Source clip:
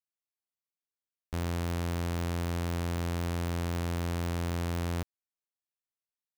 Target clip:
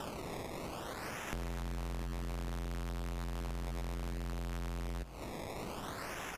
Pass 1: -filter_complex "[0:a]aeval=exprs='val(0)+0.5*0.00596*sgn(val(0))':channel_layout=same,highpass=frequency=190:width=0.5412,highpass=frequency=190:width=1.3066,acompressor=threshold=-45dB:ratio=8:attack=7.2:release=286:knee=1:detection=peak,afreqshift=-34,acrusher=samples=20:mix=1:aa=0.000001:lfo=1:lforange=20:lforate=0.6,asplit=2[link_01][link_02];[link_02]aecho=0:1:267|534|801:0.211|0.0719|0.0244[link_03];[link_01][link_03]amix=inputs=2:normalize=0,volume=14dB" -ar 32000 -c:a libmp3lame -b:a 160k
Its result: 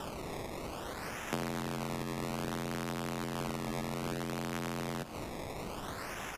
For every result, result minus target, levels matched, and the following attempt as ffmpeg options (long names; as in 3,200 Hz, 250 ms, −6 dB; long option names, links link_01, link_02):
downward compressor: peak gain reduction −8.5 dB; 250 Hz band +3.0 dB
-filter_complex "[0:a]aeval=exprs='val(0)+0.5*0.00596*sgn(val(0))':channel_layout=same,highpass=frequency=190:width=0.5412,highpass=frequency=190:width=1.3066,acompressor=threshold=-52.5dB:ratio=8:attack=7.2:release=286:knee=1:detection=peak,afreqshift=-34,acrusher=samples=20:mix=1:aa=0.000001:lfo=1:lforange=20:lforate=0.6,asplit=2[link_01][link_02];[link_02]aecho=0:1:267|534|801:0.211|0.0719|0.0244[link_03];[link_01][link_03]amix=inputs=2:normalize=0,volume=14dB" -ar 32000 -c:a libmp3lame -b:a 160k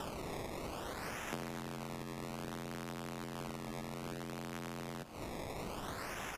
250 Hz band +2.5 dB
-filter_complex "[0:a]aeval=exprs='val(0)+0.5*0.00596*sgn(val(0))':channel_layout=same,acompressor=threshold=-52.5dB:ratio=8:attack=7.2:release=286:knee=1:detection=peak,afreqshift=-34,acrusher=samples=20:mix=1:aa=0.000001:lfo=1:lforange=20:lforate=0.6,asplit=2[link_01][link_02];[link_02]aecho=0:1:267|534|801:0.211|0.0719|0.0244[link_03];[link_01][link_03]amix=inputs=2:normalize=0,volume=14dB" -ar 32000 -c:a libmp3lame -b:a 160k